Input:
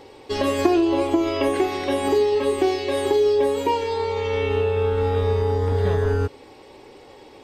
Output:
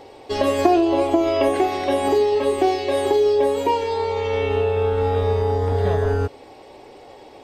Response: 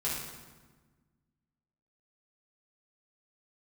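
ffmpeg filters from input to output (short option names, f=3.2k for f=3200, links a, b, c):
-af "equalizer=f=680:t=o:w=0.45:g=9.5"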